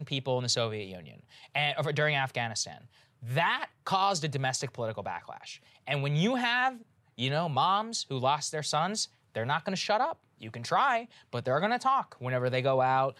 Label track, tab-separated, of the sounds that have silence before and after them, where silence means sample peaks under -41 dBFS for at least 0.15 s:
1.440000	2.780000	sound
3.230000	3.650000	sound
3.870000	5.560000	sound
5.870000	6.770000	sound
7.180000	9.050000	sound
9.350000	10.130000	sound
10.420000	11.050000	sound